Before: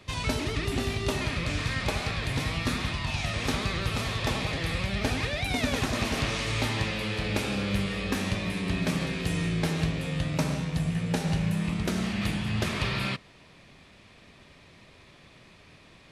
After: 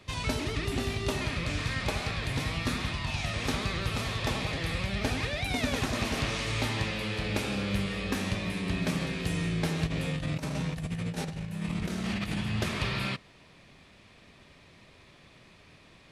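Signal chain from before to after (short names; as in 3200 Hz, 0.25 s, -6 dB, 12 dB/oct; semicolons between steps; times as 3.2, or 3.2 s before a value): 9.86–12.41 negative-ratio compressor -30 dBFS, ratio -0.5; gain -2 dB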